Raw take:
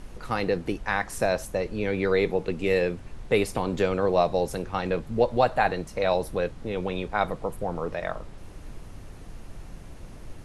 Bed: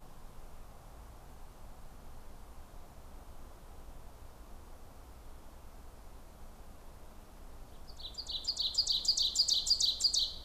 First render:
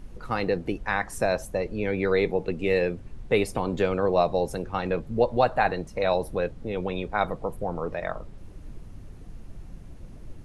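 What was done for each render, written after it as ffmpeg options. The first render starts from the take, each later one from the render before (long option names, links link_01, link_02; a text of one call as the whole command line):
ffmpeg -i in.wav -af "afftdn=noise_reduction=8:noise_floor=-43" out.wav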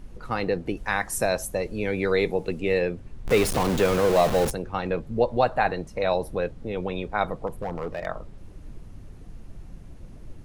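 ffmpeg -i in.wav -filter_complex "[0:a]asettb=1/sr,asplit=3[link_01][link_02][link_03];[link_01]atrim=end=0.774[link_04];[link_02]atrim=start=0.77:end=2.6,asetpts=PTS-STARTPTS,afade=type=in:duration=0.004:curve=qsin,afade=type=out:start_time=1.826:duration=0.004:curve=qsin,aemphasis=mode=production:type=50kf[link_05];[link_03]atrim=start=2.596[link_06];[link_04][link_05]acrossfade=duration=0.004:curve1=hsin:curve2=qsin[link_07];[link_07][link_06]acrossfade=duration=0.004:curve1=qsin:curve2=hsin,asettb=1/sr,asplit=3[link_08][link_09][link_10];[link_08]atrim=end=3.254[link_11];[link_09]atrim=start=3.25:end=4.51,asetpts=PTS-STARTPTS,afade=type=in:duration=0.004:curve=qsin,afade=type=out:start_time=1.256:duration=0.004:curve=qsin,aeval=exprs='val(0)+0.5*0.0708*sgn(val(0))':channel_layout=same[link_12];[link_10]atrim=start=4.506[link_13];[link_11][link_12]acrossfade=duration=0.004:curve1=hsin:curve2=qsin[link_14];[link_14][link_13]acrossfade=duration=0.004:curve1=qsin:curve2=hsin,asettb=1/sr,asplit=3[link_15][link_16][link_17];[link_15]atrim=end=7.474[link_18];[link_16]atrim=start=7.47:end=8.06,asetpts=PTS-STARTPTS,afade=type=in:duration=0.004:curve=qsin,afade=type=out:start_time=0.586:duration=0.004:curve=qsin,volume=24.5dB,asoftclip=hard,volume=-24.5dB[link_19];[link_17]atrim=start=8.056[link_20];[link_18][link_19]acrossfade=duration=0.004:curve1=hsin:curve2=qsin[link_21];[link_21][link_20]acrossfade=duration=0.004:curve1=qsin:curve2=hsin" out.wav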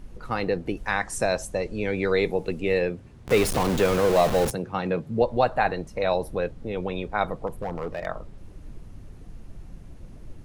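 ffmpeg -i in.wav -filter_complex "[0:a]asettb=1/sr,asplit=3[link_01][link_02][link_03];[link_01]atrim=end=0.914[link_04];[link_02]atrim=start=0.91:end=2.24,asetpts=PTS-STARTPTS,afade=type=in:duration=0.004:curve=qsin,afade=type=out:start_time=1.326:duration=0.004:curve=qsin,lowpass=frequency=9100:width=0.5412,lowpass=frequency=9100:width=1.3066[link_05];[link_03]atrim=start=2.236[link_06];[link_04][link_05]acrossfade=duration=0.004:curve1=hsin:curve2=qsin[link_07];[link_07][link_06]acrossfade=duration=0.004:curve1=qsin:curve2=hsin,asettb=1/sr,asplit=3[link_08][link_09][link_10];[link_08]atrim=end=2.904[link_11];[link_09]atrim=start=2.9:end=3.32,asetpts=PTS-STARTPTS,afade=type=in:duration=0.004:curve=qsin,afade=type=out:start_time=0.416:duration=0.004:curve=qsin,highpass=71[link_12];[link_10]atrim=start=3.316[link_13];[link_11][link_12]acrossfade=duration=0.004:curve1=hsin:curve2=qsin[link_14];[link_14][link_13]acrossfade=duration=0.004:curve1=qsin:curve2=hsin,asettb=1/sr,asplit=3[link_15][link_16][link_17];[link_15]atrim=end=4.504[link_18];[link_16]atrim=start=4.5:end=5.22,asetpts=PTS-STARTPTS,afade=type=in:duration=0.004:curve=qsin,afade=type=out:start_time=0.716:duration=0.004:curve=qsin,highpass=frequency=130:width_type=q:width=1.5[link_19];[link_17]atrim=start=5.216[link_20];[link_18][link_19]acrossfade=duration=0.004:curve1=hsin:curve2=qsin[link_21];[link_21][link_20]acrossfade=duration=0.004:curve1=qsin:curve2=hsin" out.wav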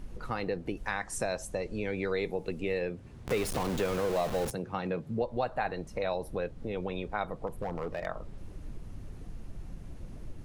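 ffmpeg -i in.wav -af "acompressor=threshold=-35dB:ratio=2" out.wav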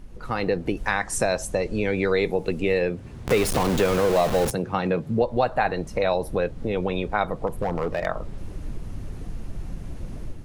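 ffmpeg -i in.wav -af "dynaudnorm=framelen=120:gausssize=5:maxgain=9.5dB" out.wav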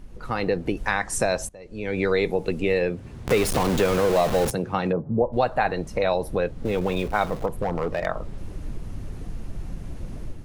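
ffmpeg -i in.wav -filter_complex "[0:a]asplit=3[link_01][link_02][link_03];[link_01]afade=type=out:start_time=4.91:duration=0.02[link_04];[link_02]lowpass=frequency=1100:width=0.5412,lowpass=frequency=1100:width=1.3066,afade=type=in:start_time=4.91:duration=0.02,afade=type=out:start_time=5.32:duration=0.02[link_05];[link_03]afade=type=in:start_time=5.32:duration=0.02[link_06];[link_04][link_05][link_06]amix=inputs=3:normalize=0,asettb=1/sr,asplit=3[link_07][link_08][link_09];[link_07]atrim=end=6.654[link_10];[link_08]atrim=start=6.65:end=7.46,asetpts=PTS-STARTPTS,afade=type=in:duration=0.004:curve=qsin,afade=type=out:start_time=0.806:duration=0.004:curve=qsin,aeval=exprs='val(0)+0.5*0.0178*sgn(val(0))':channel_layout=same[link_11];[link_09]atrim=start=7.456[link_12];[link_10][link_11]acrossfade=duration=0.004:curve1=hsin:curve2=qsin[link_13];[link_13][link_12]acrossfade=duration=0.004:curve1=qsin:curve2=hsin,asplit=2[link_14][link_15];[link_14]atrim=end=1.49,asetpts=PTS-STARTPTS,afade=type=out:start_time=1.486:duration=0.004:curve=hsin:silence=0.0794328[link_16];[link_15]atrim=start=1.49,asetpts=PTS-STARTPTS,afade=type=in:duration=0.51:curve=qua:silence=0.0794328[link_17];[link_16][link_17]concat=n=2:v=0:a=1" out.wav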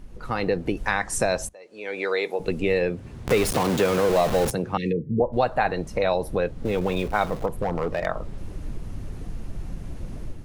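ffmpeg -i in.wav -filter_complex "[0:a]asettb=1/sr,asplit=3[link_01][link_02][link_03];[link_01]atrim=end=1.534[link_04];[link_02]atrim=start=1.53:end=2.4,asetpts=PTS-STARTPTS,afade=type=in:duration=0.004:curve=qsin,afade=type=out:start_time=0.866:duration=0.004:curve=qsin,highpass=470[link_05];[link_03]atrim=start=2.396[link_06];[link_04][link_05]acrossfade=duration=0.004:curve1=hsin:curve2=qsin[link_07];[link_07][link_06]acrossfade=duration=0.004:curve1=qsin:curve2=hsin,asettb=1/sr,asplit=3[link_08][link_09][link_10];[link_08]atrim=end=3.514[link_11];[link_09]atrim=start=3.51:end=4.09,asetpts=PTS-STARTPTS,afade=type=in:duration=0.004:curve=qsin,afade=type=out:start_time=0.576:duration=0.004:curve=qsin,highpass=100[link_12];[link_10]atrim=start=4.086[link_13];[link_11][link_12]acrossfade=duration=0.004:curve1=hsin:curve2=qsin[link_14];[link_14][link_13]acrossfade=duration=0.004:curve1=qsin:curve2=hsin,asettb=1/sr,asplit=3[link_15][link_16][link_17];[link_15]atrim=end=4.774[link_18];[link_16]atrim=start=4.77:end=5.2,asetpts=PTS-STARTPTS,afade=type=in:duration=0.004:curve=qsin,afade=type=out:start_time=0.426:duration=0.004:curve=qsin,asuperstop=centerf=960:order=20:qfactor=0.73[link_19];[link_17]atrim=start=5.196[link_20];[link_18][link_19]acrossfade=duration=0.004:curve1=hsin:curve2=qsin[link_21];[link_21][link_20]acrossfade=duration=0.004:curve1=qsin:curve2=hsin" out.wav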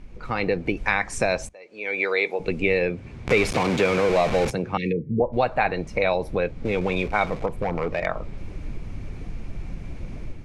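ffmpeg -i in.wav -af "lowpass=6400,equalizer=frequency=2300:width=5.9:gain=11.5" out.wav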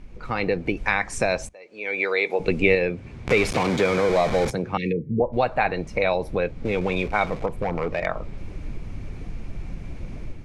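ffmpeg -i in.wav -filter_complex "[0:a]asettb=1/sr,asplit=3[link_01][link_02][link_03];[link_01]atrim=end=3.704[link_04];[link_02]atrim=start=3.7:end=4.66,asetpts=PTS-STARTPTS,afade=type=in:duration=0.004:curve=qsin,afade=type=out:start_time=0.956:duration=0.004:curve=qsin,bandreject=frequency=2700:width=6.9[link_05];[link_03]atrim=start=4.656[link_06];[link_04][link_05]acrossfade=duration=0.004:curve1=hsin:curve2=qsin[link_07];[link_07][link_06]acrossfade=duration=0.004:curve1=qsin:curve2=hsin,asplit=3[link_08][link_09][link_10];[link_08]atrim=end=2.302[link_11];[link_09]atrim=start=2.298:end=2.752,asetpts=PTS-STARTPTS,volume=3.5dB[link_12];[link_10]atrim=start=2.748[link_13];[link_11][link_12]acrossfade=duration=0.004:curve1=hsin:curve2=hsin[link_14];[link_14][link_13]acrossfade=duration=0.004:curve1=hsin:curve2=hsin" out.wav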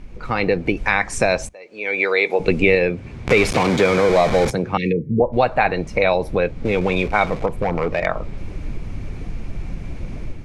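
ffmpeg -i in.wav -af "volume=5dB,alimiter=limit=-2dB:level=0:latency=1" out.wav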